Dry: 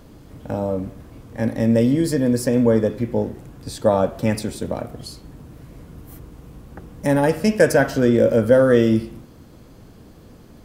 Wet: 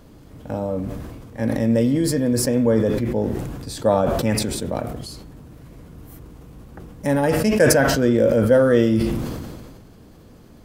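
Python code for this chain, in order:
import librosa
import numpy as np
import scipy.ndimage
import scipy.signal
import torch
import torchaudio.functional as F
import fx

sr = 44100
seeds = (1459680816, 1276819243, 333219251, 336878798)

y = fx.sustainer(x, sr, db_per_s=32.0)
y = y * librosa.db_to_amplitude(-2.0)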